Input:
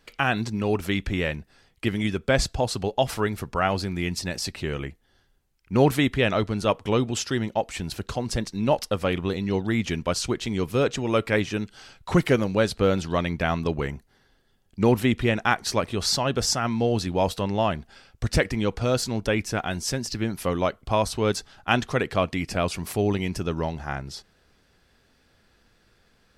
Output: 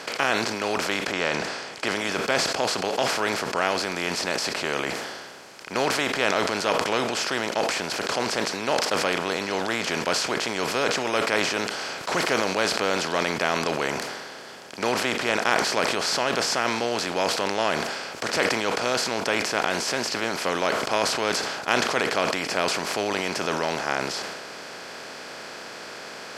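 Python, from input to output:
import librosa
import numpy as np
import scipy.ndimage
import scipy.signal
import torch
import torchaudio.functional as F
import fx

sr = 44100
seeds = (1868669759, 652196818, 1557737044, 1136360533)

y = fx.lowpass(x, sr, hz=fx.line((1.11, 5800.0), (1.97, 10000.0)), slope=24, at=(1.11, 1.97), fade=0.02)
y = fx.bin_compress(y, sr, power=0.4)
y = fx.weighting(y, sr, curve='A')
y = fx.sustainer(y, sr, db_per_s=34.0)
y = y * librosa.db_to_amplitude(-6.0)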